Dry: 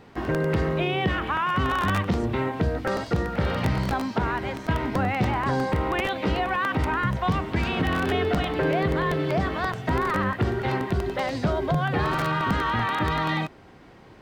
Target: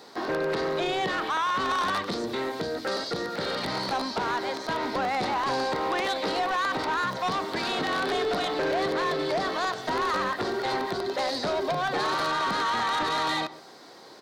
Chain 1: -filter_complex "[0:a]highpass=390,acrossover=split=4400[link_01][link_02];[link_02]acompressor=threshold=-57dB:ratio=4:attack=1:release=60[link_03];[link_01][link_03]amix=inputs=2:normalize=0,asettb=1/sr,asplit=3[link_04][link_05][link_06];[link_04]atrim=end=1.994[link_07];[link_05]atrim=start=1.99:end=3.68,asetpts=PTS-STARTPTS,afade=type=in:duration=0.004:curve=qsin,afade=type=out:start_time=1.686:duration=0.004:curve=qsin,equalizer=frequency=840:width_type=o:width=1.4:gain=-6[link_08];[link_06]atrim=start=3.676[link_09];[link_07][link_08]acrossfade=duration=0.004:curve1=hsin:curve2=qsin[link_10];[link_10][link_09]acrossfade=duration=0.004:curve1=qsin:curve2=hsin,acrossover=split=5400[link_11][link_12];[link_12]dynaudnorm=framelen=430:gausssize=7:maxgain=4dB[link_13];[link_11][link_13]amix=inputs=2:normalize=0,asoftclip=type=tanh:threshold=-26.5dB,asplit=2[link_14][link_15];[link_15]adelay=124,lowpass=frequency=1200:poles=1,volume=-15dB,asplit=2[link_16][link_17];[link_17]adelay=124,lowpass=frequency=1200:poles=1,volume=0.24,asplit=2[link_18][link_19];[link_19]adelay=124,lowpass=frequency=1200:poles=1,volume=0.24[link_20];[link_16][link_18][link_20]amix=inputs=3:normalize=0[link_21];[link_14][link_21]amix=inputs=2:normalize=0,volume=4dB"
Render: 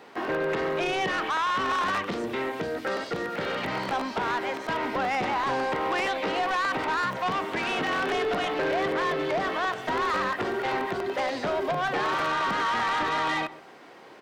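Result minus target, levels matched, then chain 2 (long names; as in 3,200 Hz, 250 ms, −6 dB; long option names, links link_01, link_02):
4,000 Hz band −3.5 dB
-filter_complex "[0:a]highpass=390,highshelf=frequency=3400:width_type=q:width=3:gain=7,acrossover=split=4400[link_01][link_02];[link_02]acompressor=threshold=-57dB:ratio=4:attack=1:release=60[link_03];[link_01][link_03]amix=inputs=2:normalize=0,asettb=1/sr,asplit=3[link_04][link_05][link_06];[link_04]atrim=end=1.994[link_07];[link_05]atrim=start=1.99:end=3.68,asetpts=PTS-STARTPTS,afade=type=in:duration=0.004:curve=qsin,afade=type=out:start_time=1.686:duration=0.004:curve=qsin,equalizer=frequency=840:width_type=o:width=1.4:gain=-6[link_08];[link_06]atrim=start=3.676[link_09];[link_07][link_08]acrossfade=duration=0.004:curve1=hsin:curve2=qsin[link_10];[link_10][link_09]acrossfade=duration=0.004:curve1=qsin:curve2=hsin,acrossover=split=5400[link_11][link_12];[link_12]dynaudnorm=framelen=430:gausssize=7:maxgain=4dB[link_13];[link_11][link_13]amix=inputs=2:normalize=0,asoftclip=type=tanh:threshold=-26.5dB,asplit=2[link_14][link_15];[link_15]adelay=124,lowpass=frequency=1200:poles=1,volume=-15dB,asplit=2[link_16][link_17];[link_17]adelay=124,lowpass=frequency=1200:poles=1,volume=0.24,asplit=2[link_18][link_19];[link_19]adelay=124,lowpass=frequency=1200:poles=1,volume=0.24[link_20];[link_16][link_18][link_20]amix=inputs=3:normalize=0[link_21];[link_14][link_21]amix=inputs=2:normalize=0,volume=4dB"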